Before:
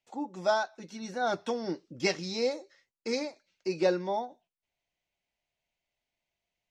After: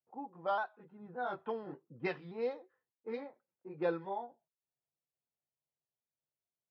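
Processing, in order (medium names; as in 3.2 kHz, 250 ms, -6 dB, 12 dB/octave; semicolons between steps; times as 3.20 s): sawtooth pitch modulation -1.5 st, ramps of 578 ms; cabinet simulation 130–2800 Hz, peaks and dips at 140 Hz +4 dB, 200 Hz -7 dB, 300 Hz -8 dB, 600 Hz -6 dB, 1 kHz +4 dB, 2.2 kHz -7 dB; level-controlled noise filter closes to 520 Hz, open at -27 dBFS; trim -4 dB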